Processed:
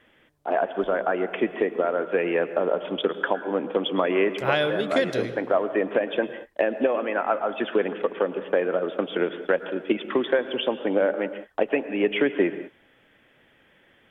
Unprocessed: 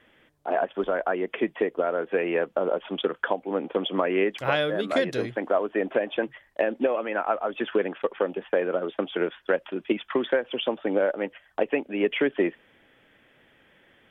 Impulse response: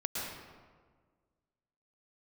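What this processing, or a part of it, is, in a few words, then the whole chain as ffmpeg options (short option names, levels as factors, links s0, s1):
keyed gated reverb: -filter_complex "[0:a]asplit=3[s0][s1][s2];[1:a]atrim=start_sample=2205[s3];[s1][s3]afir=irnorm=-1:irlink=0[s4];[s2]apad=whole_len=622098[s5];[s4][s5]sidechaingate=range=0.0224:threshold=0.00447:ratio=16:detection=peak,volume=0.211[s6];[s0][s6]amix=inputs=2:normalize=0"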